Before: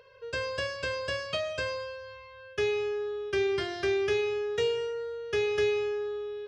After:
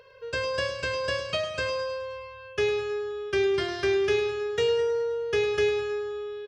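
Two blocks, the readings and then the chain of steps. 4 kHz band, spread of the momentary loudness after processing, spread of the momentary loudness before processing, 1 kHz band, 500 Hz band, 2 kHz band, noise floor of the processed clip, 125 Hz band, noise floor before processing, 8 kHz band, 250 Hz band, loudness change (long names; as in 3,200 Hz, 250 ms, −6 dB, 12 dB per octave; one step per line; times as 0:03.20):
+3.5 dB, 9 LU, 9 LU, +4.0 dB, +3.5 dB, +3.0 dB, −44 dBFS, +3.5 dB, −49 dBFS, can't be measured, +3.5 dB, +3.0 dB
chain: repeating echo 105 ms, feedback 56%, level −10.5 dB
level +3 dB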